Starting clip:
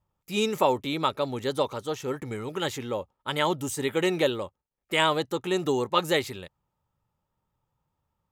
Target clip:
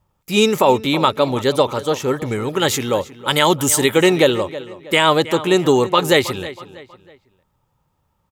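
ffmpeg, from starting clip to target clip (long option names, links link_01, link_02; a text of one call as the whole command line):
ffmpeg -i in.wav -filter_complex "[0:a]asettb=1/sr,asplit=3[link_01][link_02][link_03];[link_01]atrim=end=2.684[link_04];[link_02]atrim=start=2.68:end=3.97,asetpts=PTS-STARTPTS,afade=type=in:duration=0.004:curve=qsin,afade=type=out:start_time=1.286:duration=0.004:curve=qsin,highshelf=frequency=3600:gain=8[link_05];[link_03]atrim=start=3.966[link_06];[link_04][link_05]acrossfade=duration=0.004:curve1=hsin:curve2=qsin[link_07];[link_07][link_06]acrossfade=duration=0.004:curve1=qsin:curve2=hsin,asplit=2[link_08][link_09];[link_09]adelay=320,lowpass=frequency=4300:poles=1,volume=-16.5dB,asplit=2[link_10][link_11];[link_11]adelay=320,lowpass=frequency=4300:poles=1,volume=0.39,asplit=2[link_12][link_13];[link_13]adelay=320,lowpass=frequency=4300:poles=1,volume=0.39[link_14];[link_08][link_10][link_12][link_14]amix=inputs=4:normalize=0,alimiter=level_in=12.5dB:limit=-1dB:release=50:level=0:latency=1,volume=-1dB" out.wav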